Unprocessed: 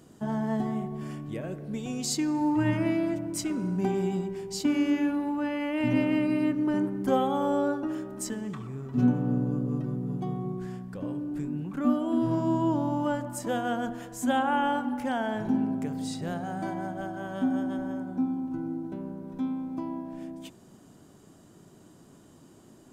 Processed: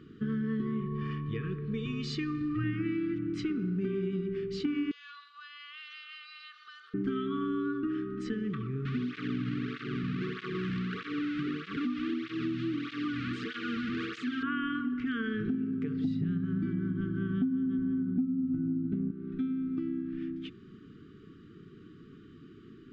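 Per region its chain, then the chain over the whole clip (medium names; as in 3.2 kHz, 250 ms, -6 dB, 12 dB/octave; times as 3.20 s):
0.80–2.64 s: low-pass 8.7 kHz + comb 1.7 ms, depth 61%
4.91–6.94 s: steep high-pass 620 Hz 72 dB/octave + resonant high shelf 3 kHz +9.5 dB, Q 3 + compression 5:1, threshold -43 dBFS
8.85–14.43 s: one-bit delta coder 64 kbps, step -26.5 dBFS + compression 2.5:1, threshold -28 dBFS + cancelling through-zero flanger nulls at 1.6 Hz, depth 2.7 ms
16.04–19.11 s: resonant low shelf 390 Hz +11.5 dB, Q 1.5 + band-stop 340 Hz, Q 8 + doubling 29 ms -13 dB
whole clip: low-pass 3.5 kHz 24 dB/octave; FFT band-reject 470–1100 Hz; compression, threshold -32 dBFS; trim +3 dB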